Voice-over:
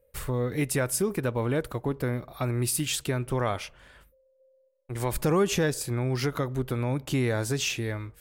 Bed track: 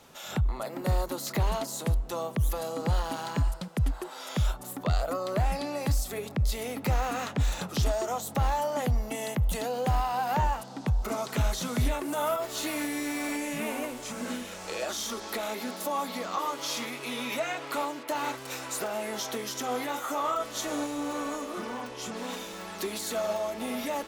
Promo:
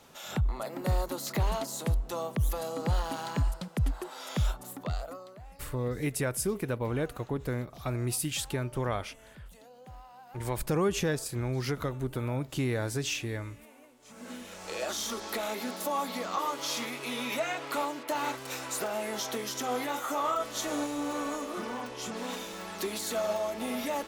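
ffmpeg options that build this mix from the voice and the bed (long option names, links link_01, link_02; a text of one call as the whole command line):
ffmpeg -i stem1.wav -i stem2.wav -filter_complex "[0:a]adelay=5450,volume=-4dB[link_01];[1:a]volume=20.5dB,afade=type=out:start_time=4.46:duration=0.91:silence=0.0891251,afade=type=in:start_time=13.99:duration=0.92:silence=0.0794328[link_02];[link_01][link_02]amix=inputs=2:normalize=0" out.wav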